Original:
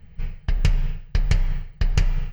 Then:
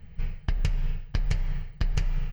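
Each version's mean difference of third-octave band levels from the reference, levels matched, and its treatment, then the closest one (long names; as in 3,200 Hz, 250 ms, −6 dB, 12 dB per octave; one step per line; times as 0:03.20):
2.5 dB: downward compressor, threshold −22 dBFS, peak gain reduction 8.5 dB
single-tap delay 657 ms −15 dB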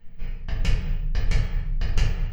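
4.5 dB: parametric band 62 Hz −4 dB 1.5 octaves
rectangular room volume 120 cubic metres, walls mixed, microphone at 1.6 metres
level −7.5 dB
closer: first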